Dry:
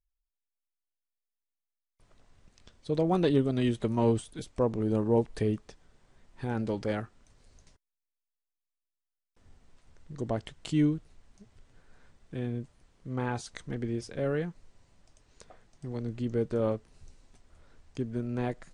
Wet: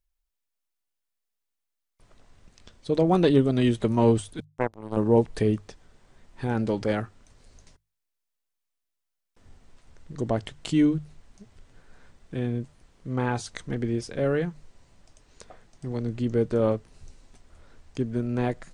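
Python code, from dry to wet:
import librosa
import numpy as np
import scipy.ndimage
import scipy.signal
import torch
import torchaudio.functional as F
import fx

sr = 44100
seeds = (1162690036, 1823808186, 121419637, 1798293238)

y = fx.power_curve(x, sr, exponent=3.0, at=(4.4, 4.97))
y = fx.hum_notches(y, sr, base_hz=50, count=3)
y = y * librosa.db_to_amplitude(5.5)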